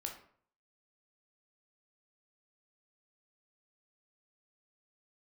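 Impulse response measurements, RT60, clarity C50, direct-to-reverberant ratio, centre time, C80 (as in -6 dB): 0.55 s, 7.5 dB, 1.5 dB, 21 ms, 12.0 dB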